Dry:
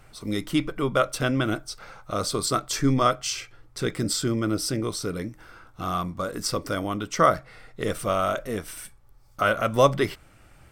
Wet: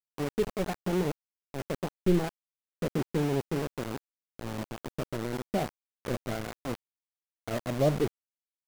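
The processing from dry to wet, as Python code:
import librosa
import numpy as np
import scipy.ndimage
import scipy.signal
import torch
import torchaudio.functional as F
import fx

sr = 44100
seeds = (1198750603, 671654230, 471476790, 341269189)

y = fx.speed_glide(x, sr, from_pct=141, to_pct=106)
y = scipy.ndimage.gaussian_filter1d(y, 15.0, mode='constant')
y = np.where(np.abs(y) >= 10.0 ** (-30.0 / 20.0), y, 0.0)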